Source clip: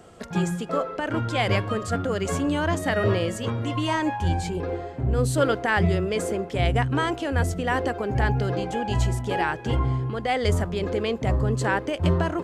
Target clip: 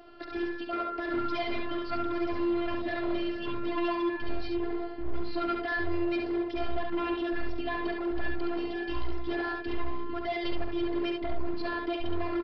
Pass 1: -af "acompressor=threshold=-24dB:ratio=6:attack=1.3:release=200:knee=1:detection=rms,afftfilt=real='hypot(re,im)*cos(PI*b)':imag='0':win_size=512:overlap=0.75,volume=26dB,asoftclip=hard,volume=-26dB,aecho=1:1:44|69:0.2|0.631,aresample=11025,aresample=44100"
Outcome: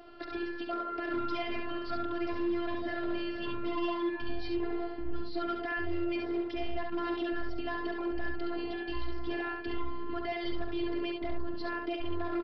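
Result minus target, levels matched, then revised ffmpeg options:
downward compressor: peak gain reduction +5.5 dB
-af "acompressor=threshold=-17.5dB:ratio=6:attack=1.3:release=200:knee=1:detection=rms,afftfilt=real='hypot(re,im)*cos(PI*b)':imag='0':win_size=512:overlap=0.75,volume=26dB,asoftclip=hard,volume=-26dB,aecho=1:1:44|69:0.2|0.631,aresample=11025,aresample=44100"

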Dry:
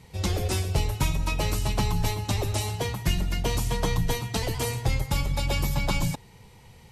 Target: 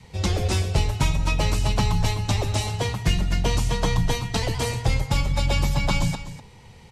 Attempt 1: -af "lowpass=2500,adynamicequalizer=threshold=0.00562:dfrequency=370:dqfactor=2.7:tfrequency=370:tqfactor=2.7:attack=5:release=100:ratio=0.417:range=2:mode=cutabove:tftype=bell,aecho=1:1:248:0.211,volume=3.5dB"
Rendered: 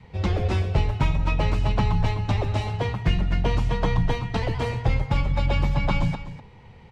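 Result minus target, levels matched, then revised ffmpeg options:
8,000 Hz band −16.0 dB
-af "lowpass=8100,adynamicequalizer=threshold=0.00562:dfrequency=370:dqfactor=2.7:tfrequency=370:tqfactor=2.7:attack=5:release=100:ratio=0.417:range=2:mode=cutabove:tftype=bell,aecho=1:1:248:0.211,volume=3.5dB"

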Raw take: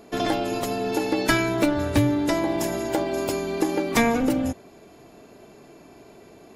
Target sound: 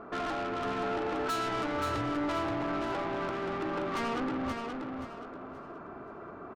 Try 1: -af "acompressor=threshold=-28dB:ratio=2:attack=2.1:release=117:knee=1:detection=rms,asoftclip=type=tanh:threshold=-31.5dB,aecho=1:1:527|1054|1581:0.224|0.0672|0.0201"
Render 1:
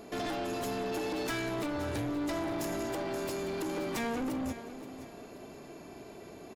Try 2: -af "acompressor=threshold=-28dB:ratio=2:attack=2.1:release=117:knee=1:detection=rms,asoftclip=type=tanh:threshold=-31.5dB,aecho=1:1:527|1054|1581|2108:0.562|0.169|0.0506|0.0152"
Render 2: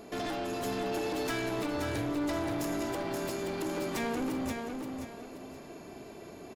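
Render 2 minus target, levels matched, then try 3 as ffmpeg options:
1,000 Hz band −4.5 dB
-af "acompressor=threshold=-28dB:ratio=2:attack=2.1:release=117:knee=1:detection=rms,lowpass=frequency=1300:width_type=q:width=7.4,asoftclip=type=tanh:threshold=-31.5dB,aecho=1:1:527|1054|1581|2108:0.562|0.169|0.0506|0.0152"

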